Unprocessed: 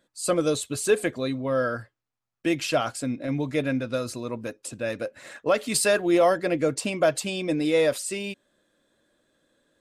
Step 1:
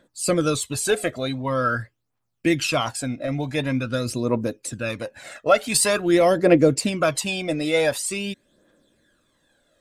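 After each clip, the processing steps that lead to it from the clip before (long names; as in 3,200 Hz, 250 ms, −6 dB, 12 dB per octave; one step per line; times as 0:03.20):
phase shifter 0.46 Hz, delay 1.6 ms, feedback 60%
level +3 dB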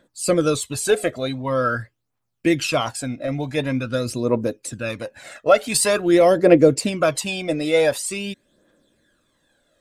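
dynamic equaliser 470 Hz, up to +4 dB, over −28 dBFS, Q 1.3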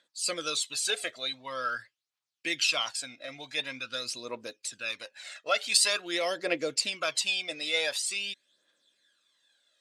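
resonant band-pass 4,100 Hz, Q 1.2
level +2 dB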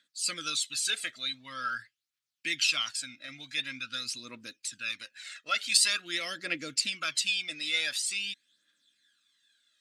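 flat-topped bell 620 Hz −14.5 dB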